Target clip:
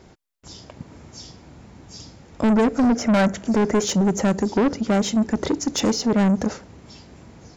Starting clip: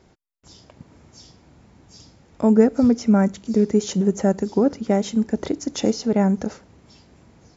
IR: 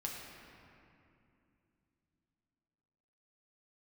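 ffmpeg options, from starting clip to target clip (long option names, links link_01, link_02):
-filter_complex "[0:a]asettb=1/sr,asplit=3[link_01][link_02][link_03];[link_01]atrim=end=2.954[link_04];[link_02]atrim=start=2.95:end=3.85,asetpts=PTS-STARTPTS,afade=type=in:duration=0.004:curve=qsin,afade=type=out:start_time=0.896:duration=0.004:curve=qsin,equalizer=frequency=630:width_type=o:width=0.67:gain=9,equalizer=frequency=1600:width_type=o:width=0.67:gain=9,equalizer=frequency=4000:width_type=o:width=0.67:gain=-6[link_05];[link_03]atrim=start=3.846[link_06];[link_04][link_05]acrossfade=duration=0.004:curve1=hsin:curve2=qsin[link_07];[link_07][link_06]acrossfade=duration=0.004:curve1=qsin:curve2=hsin,asoftclip=type=tanh:threshold=-21dB,volume=6.5dB"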